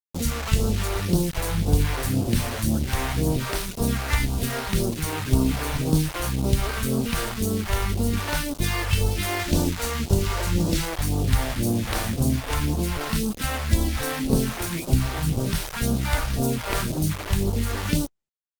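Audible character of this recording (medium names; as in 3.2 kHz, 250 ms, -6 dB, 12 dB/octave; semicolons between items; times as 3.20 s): a quantiser's noise floor 6-bit, dither none; phasing stages 2, 1.9 Hz, lowest notch 170–1900 Hz; Opus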